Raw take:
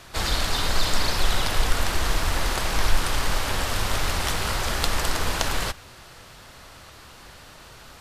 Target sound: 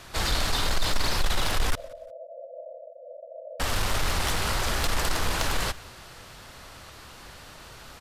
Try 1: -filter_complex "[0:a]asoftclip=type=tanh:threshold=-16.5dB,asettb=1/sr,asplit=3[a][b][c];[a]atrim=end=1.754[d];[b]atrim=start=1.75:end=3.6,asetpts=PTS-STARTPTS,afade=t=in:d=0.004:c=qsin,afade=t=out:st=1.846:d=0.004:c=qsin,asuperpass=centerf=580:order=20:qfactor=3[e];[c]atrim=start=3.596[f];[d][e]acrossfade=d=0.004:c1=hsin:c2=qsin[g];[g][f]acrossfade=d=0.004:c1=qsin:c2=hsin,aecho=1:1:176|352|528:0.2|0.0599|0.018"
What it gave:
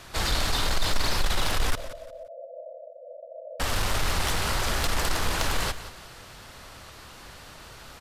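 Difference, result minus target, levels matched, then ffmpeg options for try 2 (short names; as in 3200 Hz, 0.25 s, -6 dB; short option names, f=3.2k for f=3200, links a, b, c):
echo-to-direct +10 dB
-filter_complex "[0:a]asoftclip=type=tanh:threshold=-16.5dB,asettb=1/sr,asplit=3[a][b][c];[a]atrim=end=1.754[d];[b]atrim=start=1.75:end=3.6,asetpts=PTS-STARTPTS,afade=t=in:d=0.004:c=qsin,afade=t=out:st=1.846:d=0.004:c=qsin,asuperpass=centerf=580:order=20:qfactor=3[e];[c]atrim=start=3.596[f];[d][e]acrossfade=d=0.004:c1=hsin:c2=qsin[g];[g][f]acrossfade=d=0.004:c1=qsin:c2=hsin,aecho=1:1:176|352:0.0631|0.0189"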